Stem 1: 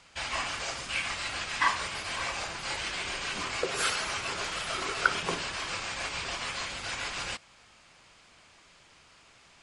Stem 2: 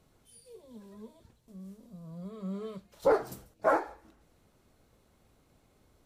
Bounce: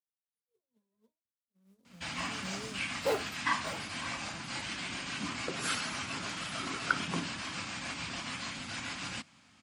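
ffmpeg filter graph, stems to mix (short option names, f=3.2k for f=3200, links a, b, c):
-filter_complex "[0:a]lowshelf=f=330:t=q:w=3:g=7,adelay=1850,volume=-4.5dB[a];[1:a]acrusher=bits=4:mode=log:mix=0:aa=0.000001,volume=-6.5dB,afade=t=in:st=1.63:d=0.35:silence=0.237137,afade=t=out:st=3.16:d=0.32:silence=0.281838[b];[a][b]amix=inputs=2:normalize=0,agate=range=-33dB:threshold=-59dB:ratio=3:detection=peak,highpass=110"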